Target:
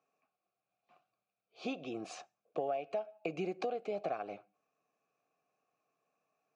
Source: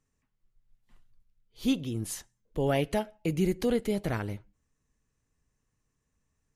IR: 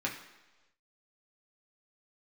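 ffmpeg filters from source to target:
-filter_complex "[0:a]asplit=3[link_01][link_02][link_03];[link_01]bandpass=frequency=730:width_type=q:width=8,volume=0dB[link_04];[link_02]bandpass=frequency=1090:width_type=q:width=8,volume=-6dB[link_05];[link_03]bandpass=frequency=2440:width_type=q:width=8,volume=-9dB[link_06];[link_04][link_05][link_06]amix=inputs=3:normalize=0,acompressor=threshold=-50dB:ratio=12,highpass=frequency=150:width=0.5412,highpass=frequency=150:width=1.3066,equalizer=frequency=230:width_type=q:width=4:gain=-5,equalizer=frequency=1000:width_type=q:width=4:gain=-8,equalizer=frequency=3100:width_type=q:width=4:gain=-8,lowpass=frequency=7000:width=0.5412,lowpass=frequency=7000:width=1.3066,volume=18dB"

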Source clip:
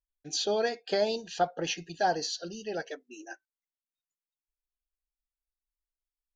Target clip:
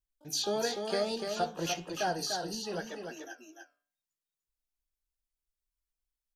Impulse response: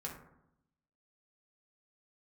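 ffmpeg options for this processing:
-filter_complex "[0:a]asplit=2[link_01][link_02];[link_02]alimiter=limit=-23dB:level=0:latency=1:release=296,volume=-3dB[link_03];[link_01][link_03]amix=inputs=2:normalize=0,bass=frequency=250:gain=6,treble=frequency=4000:gain=4,bandreject=frequency=145.7:width_type=h:width=4,bandreject=frequency=291.4:width_type=h:width=4,bandreject=frequency=437.1:width_type=h:width=4,bandreject=frequency=582.8:width_type=h:width=4,bandreject=frequency=728.5:width_type=h:width=4,bandreject=frequency=874.2:width_type=h:width=4,bandreject=frequency=1019.9:width_type=h:width=4,bandreject=frequency=1165.6:width_type=h:width=4,bandreject=frequency=1311.3:width_type=h:width=4,bandreject=frequency=1457:width_type=h:width=4,bandreject=frequency=1602.7:width_type=h:width=4,bandreject=frequency=1748.4:width_type=h:width=4,bandreject=frequency=1894.1:width_type=h:width=4,bandreject=frequency=2039.8:width_type=h:width=4,bandreject=frequency=2185.5:width_type=h:width=4,bandreject=frequency=2331.2:width_type=h:width=4,bandreject=frequency=2476.9:width_type=h:width=4,bandreject=frequency=2622.6:width_type=h:width=4,bandreject=frequency=2768.3:width_type=h:width=4,bandreject=frequency=2914:width_type=h:width=4,bandreject=frequency=3059.7:width_type=h:width=4,bandreject=frequency=3205.4:width_type=h:width=4,bandreject=frequency=3351.1:width_type=h:width=4,bandreject=frequency=3496.8:width_type=h:width=4,bandreject=frequency=3642.5:width_type=h:width=4,bandreject=frequency=3788.2:width_type=h:width=4,bandreject=frequency=3933.9:width_type=h:width=4,flanger=delay=6.3:depth=8.9:regen=-75:speed=1:shape=triangular,asplit=2[link_04][link_05];[link_05]asetrate=88200,aresample=44100,atempo=0.5,volume=-14dB[link_06];[link_04][link_06]amix=inputs=2:normalize=0,asplit=2[link_07][link_08];[link_08]aecho=0:1:296:0.531[link_09];[link_07][link_09]amix=inputs=2:normalize=0,volume=-3.5dB"

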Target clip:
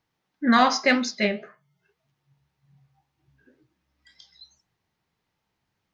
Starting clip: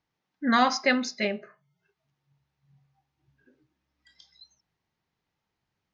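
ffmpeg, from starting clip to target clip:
ffmpeg -i in.wav -filter_complex "[0:a]asplit=2[link_01][link_02];[link_02]asoftclip=type=tanh:threshold=-18.5dB,volume=-10.5dB[link_03];[link_01][link_03]amix=inputs=2:normalize=0,flanger=delay=8.3:depth=7.5:regen=66:speed=1.9:shape=sinusoidal,volume=6dB" out.wav

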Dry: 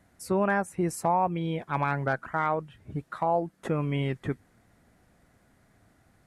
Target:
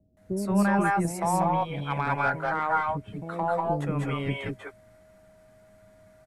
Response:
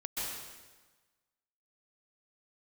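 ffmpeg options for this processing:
-filter_complex "[0:a]aeval=exprs='val(0)+0.001*sin(2*PI*630*n/s)':channel_layout=same,acrossover=split=450[link_01][link_02];[link_02]adelay=170[link_03];[link_01][link_03]amix=inputs=2:normalize=0,aeval=exprs='0.211*(cos(1*acos(clip(val(0)/0.211,-1,1)))-cos(1*PI/2))+0.00422*(cos(6*acos(clip(val(0)/0.211,-1,1)))-cos(6*PI/2))+0.0015*(cos(8*acos(clip(val(0)/0.211,-1,1)))-cos(8*PI/2))':channel_layout=same[link_04];[1:a]atrim=start_sample=2205,atrim=end_sample=6174,asetrate=29106,aresample=44100[link_05];[link_04][link_05]afir=irnorm=-1:irlink=0,volume=1dB"

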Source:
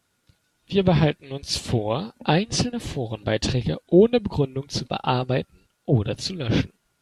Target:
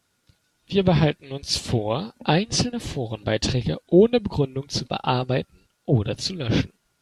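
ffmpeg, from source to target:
ffmpeg -i in.wav -af "equalizer=frequency=5200:width=1.5:gain=2.5" out.wav

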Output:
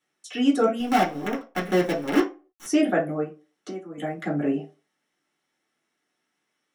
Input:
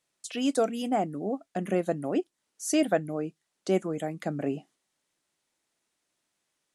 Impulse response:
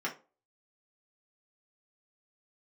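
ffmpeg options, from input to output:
-filter_complex "[0:a]asettb=1/sr,asplit=3[link_01][link_02][link_03];[link_01]atrim=end=0.804[link_04];[link_02]atrim=start=0.8:end=2.66,asetpts=PTS-STARTPTS,afade=type=in:duration=0.004:curve=qsin,afade=type=out:start_time=1.856:duration=0.004:curve=qsin,acrusher=bits=5:dc=4:mix=0:aa=0.000001[link_05];[link_03]atrim=start=2.656[link_06];[link_04][link_05]acrossfade=duration=0.004:curve1=hsin:curve2=qsin[link_07];[link_07][link_06]acrossfade=duration=0.004:curve1=qsin:curve2=hsin,asettb=1/sr,asplit=3[link_08][link_09][link_10];[link_08]atrim=end=3.234[link_11];[link_09]atrim=start=3.23:end=3.98,asetpts=PTS-STARTPTS,afade=type=in:duration=0.004:curve=qsin,afade=type=out:start_time=0.746:duration=0.004:curve=qsin,acompressor=threshold=-38dB:ratio=8[link_12];[link_10]atrim=start=3.976[link_13];[link_11][link_12]acrossfade=duration=0.004:curve1=hsin:curve2=qsin[link_14];[link_14][link_13]acrossfade=duration=0.004:curve1=qsin:curve2=hsin[link_15];[1:a]atrim=start_sample=2205,afade=type=out:start_time=0.37:duration=0.01,atrim=end_sample=16758[link_16];[link_15][link_16]afir=irnorm=-1:irlink=0"

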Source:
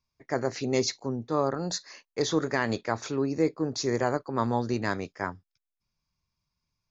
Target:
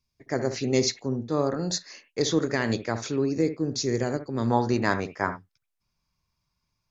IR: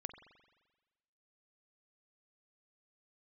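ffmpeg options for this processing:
-filter_complex "[0:a]asetnsamples=nb_out_samples=441:pad=0,asendcmd='3.41 equalizer g -14;4.5 equalizer g 2',equalizer=frequency=1000:width_type=o:width=1.5:gain=-7.5[link_01];[1:a]atrim=start_sample=2205,atrim=end_sample=3087,asetrate=31311,aresample=44100[link_02];[link_01][link_02]afir=irnorm=-1:irlink=0,volume=6dB"

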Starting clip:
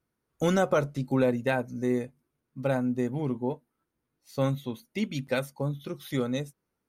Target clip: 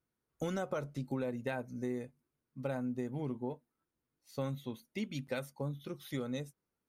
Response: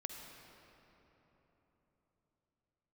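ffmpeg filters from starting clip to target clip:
-af "acompressor=threshold=-26dB:ratio=6,volume=-6.5dB"

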